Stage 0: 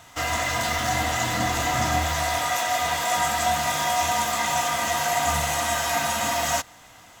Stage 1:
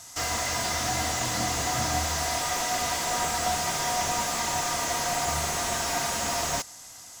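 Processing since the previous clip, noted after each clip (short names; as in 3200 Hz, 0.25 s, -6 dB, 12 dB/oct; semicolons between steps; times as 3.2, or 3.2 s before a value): band shelf 7300 Hz +15 dB; slew limiter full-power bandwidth 300 Hz; gain -4.5 dB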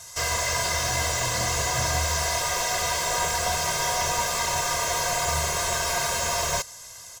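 comb 1.9 ms, depth 94%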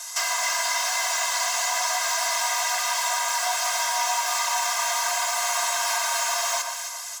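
steep high-pass 690 Hz 48 dB/oct; compressor 6:1, threshold -30 dBFS, peak gain reduction 8 dB; echo with dull and thin repeats by turns 0.135 s, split 1500 Hz, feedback 61%, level -4 dB; gain +7 dB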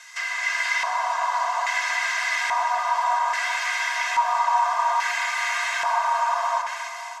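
AGC gain up to 4.5 dB; LFO band-pass square 0.6 Hz 950–2000 Hz; on a send at -10.5 dB: reverb RT60 5.5 s, pre-delay 45 ms; on the sum: gain +3.5 dB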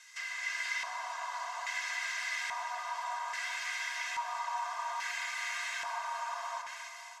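bell 790 Hz -7.5 dB 1.9 oct; gain -9 dB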